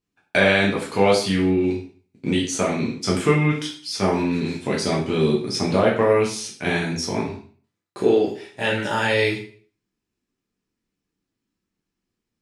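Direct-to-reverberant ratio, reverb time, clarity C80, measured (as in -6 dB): -4.0 dB, 0.45 s, 11.0 dB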